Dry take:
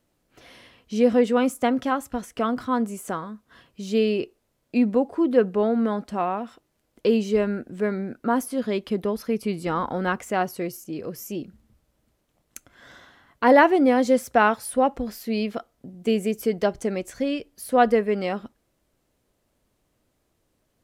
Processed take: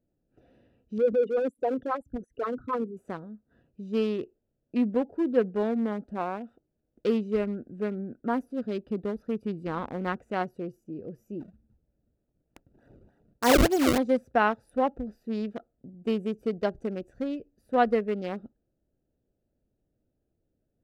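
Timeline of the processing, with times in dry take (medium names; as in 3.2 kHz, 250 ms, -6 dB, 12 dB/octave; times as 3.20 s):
0.98–2.97 s: resonances exaggerated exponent 3
11.40–13.98 s: decimation with a swept rate 30×, swing 160% 3.3 Hz
whole clip: local Wiener filter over 41 samples; trim -4.5 dB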